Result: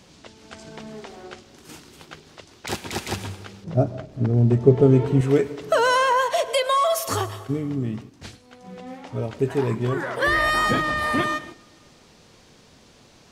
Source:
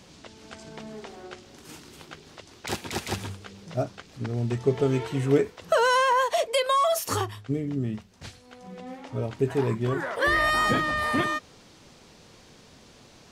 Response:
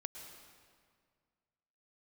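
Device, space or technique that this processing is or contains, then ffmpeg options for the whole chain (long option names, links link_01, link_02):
keyed gated reverb: -filter_complex "[0:a]asplit=3[link_01][link_02][link_03];[1:a]atrim=start_sample=2205[link_04];[link_02][link_04]afir=irnorm=-1:irlink=0[link_05];[link_03]apad=whole_len=587308[link_06];[link_05][link_06]sidechaingate=range=-12dB:threshold=-45dB:ratio=16:detection=peak,volume=-3dB[link_07];[link_01][link_07]amix=inputs=2:normalize=0,asettb=1/sr,asplit=3[link_08][link_09][link_10];[link_08]atrim=end=3.644[link_11];[link_09]atrim=start=3.64:end=5.21,asetpts=PTS-STARTPTS,afade=type=in:duration=0.004:curve=qsin,afade=type=out:start_time=1.566:duration=0.004:curve=qsin,tiltshelf=frequency=970:gain=8.5[link_12];[link_10]atrim=start=5.206[link_13];[link_11][link_12]acrossfade=duration=0.004:curve1=hsin:curve2=qsin[link_14];[link_14][link_13]acrossfade=duration=0.004:curve1=qsin:curve2=hsin,volume=-1dB"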